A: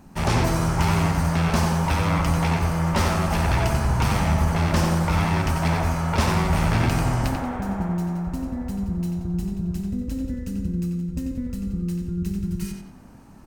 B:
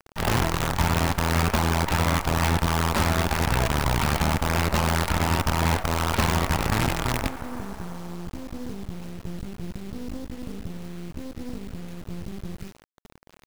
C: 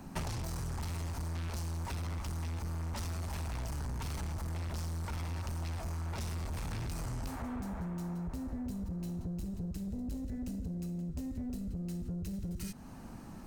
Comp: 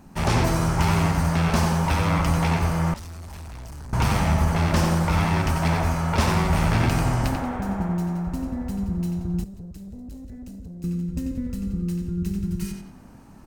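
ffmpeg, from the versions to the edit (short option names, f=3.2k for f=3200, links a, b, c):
-filter_complex "[2:a]asplit=2[a][b];[0:a]asplit=3[c][d][e];[c]atrim=end=2.942[f];[a]atrim=start=2.938:end=3.932[g];[d]atrim=start=3.928:end=9.442[h];[b]atrim=start=9.438:end=10.842[i];[e]atrim=start=10.838[j];[f][g]acrossfade=d=0.004:c1=hsin:c2=hsin[k];[k][h]acrossfade=d=0.004:c1=hsin:c2=hsin[l];[l][i]acrossfade=d=0.004:c1=hsin:c2=hsin[m];[m][j]acrossfade=d=0.004:c1=hsin:c2=hsin"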